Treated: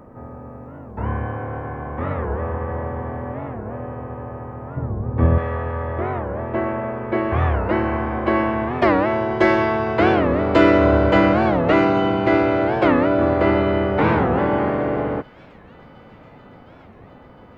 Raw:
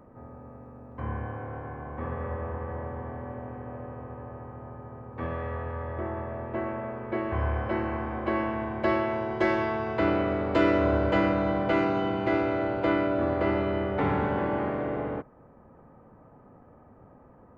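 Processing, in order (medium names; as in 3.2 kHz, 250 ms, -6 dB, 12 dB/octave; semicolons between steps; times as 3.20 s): 4.77–5.38 s: tilt EQ -3.5 dB/octave; feedback echo behind a high-pass 710 ms, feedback 80%, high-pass 2.3 kHz, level -22 dB; warped record 45 rpm, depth 250 cents; trim +9 dB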